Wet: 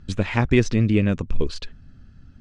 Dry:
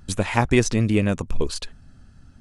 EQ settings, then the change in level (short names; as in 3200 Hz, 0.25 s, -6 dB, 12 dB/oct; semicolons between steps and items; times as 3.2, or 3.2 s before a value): air absorption 150 m; bell 830 Hz -7.5 dB 1.3 oct; +2.0 dB